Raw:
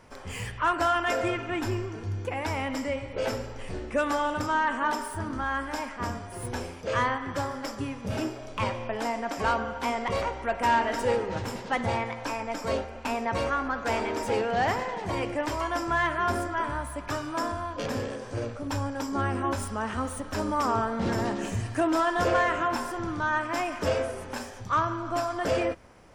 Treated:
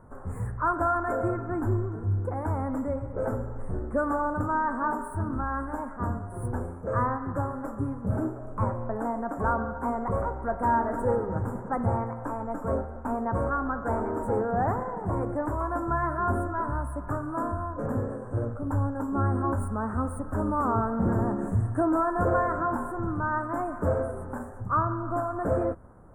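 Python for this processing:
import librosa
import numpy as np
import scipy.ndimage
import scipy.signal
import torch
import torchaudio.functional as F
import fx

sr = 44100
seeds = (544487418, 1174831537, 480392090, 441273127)

y = scipy.signal.sosfilt(scipy.signal.ellip(3, 1.0, 80, [1400.0, 8500.0], 'bandstop', fs=sr, output='sos'), x)
y = fx.bass_treble(y, sr, bass_db=6, treble_db=-8)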